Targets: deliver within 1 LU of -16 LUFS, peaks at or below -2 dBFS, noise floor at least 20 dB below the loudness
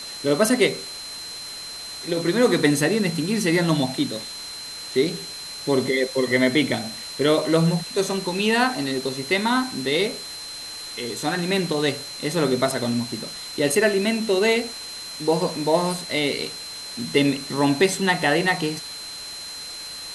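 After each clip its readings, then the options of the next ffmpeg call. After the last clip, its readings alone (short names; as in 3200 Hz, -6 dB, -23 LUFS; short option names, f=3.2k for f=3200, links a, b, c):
steady tone 4100 Hz; tone level -34 dBFS; noise floor -35 dBFS; noise floor target -43 dBFS; loudness -23.0 LUFS; peak -5.5 dBFS; loudness target -16.0 LUFS
-> -af "bandreject=f=4.1k:w=30"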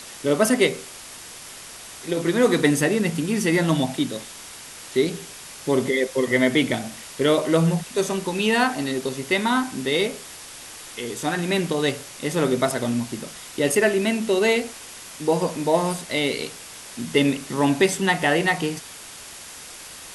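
steady tone none; noise floor -40 dBFS; noise floor target -43 dBFS
-> -af "afftdn=nr=6:nf=-40"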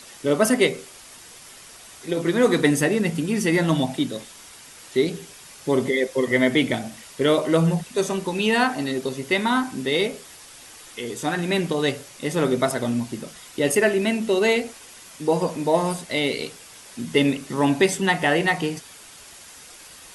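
noise floor -45 dBFS; loudness -22.5 LUFS; peak -5.5 dBFS; loudness target -16.0 LUFS
-> -af "volume=6.5dB,alimiter=limit=-2dB:level=0:latency=1"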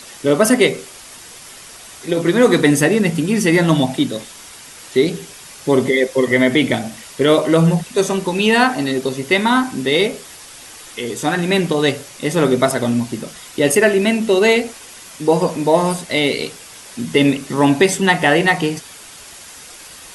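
loudness -16.0 LUFS; peak -2.0 dBFS; noise floor -38 dBFS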